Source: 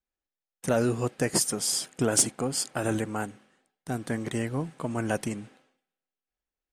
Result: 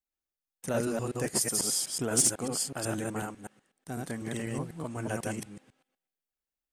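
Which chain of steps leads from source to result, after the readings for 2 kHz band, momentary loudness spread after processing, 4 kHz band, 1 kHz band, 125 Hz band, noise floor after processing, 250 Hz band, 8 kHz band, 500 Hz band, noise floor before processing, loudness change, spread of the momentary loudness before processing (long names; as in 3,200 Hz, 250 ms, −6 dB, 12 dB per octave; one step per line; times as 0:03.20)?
−4.0 dB, 16 LU, −2.5 dB, −4.5 dB, −4.5 dB, below −85 dBFS, −4.5 dB, −0.5 dB, −4.5 dB, below −85 dBFS, −2.5 dB, 12 LU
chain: delay that plays each chunk backwards 124 ms, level −1 dB
high-shelf EQ 7,500 Hz +7 dB
level −7 dB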